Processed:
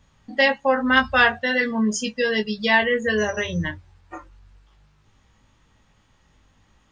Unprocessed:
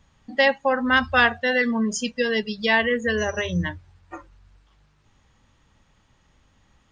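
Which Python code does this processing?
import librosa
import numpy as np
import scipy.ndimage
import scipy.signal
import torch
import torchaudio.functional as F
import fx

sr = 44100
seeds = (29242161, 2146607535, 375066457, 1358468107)

y = fx.doubler(x, sr, ms=19.0, db=-5)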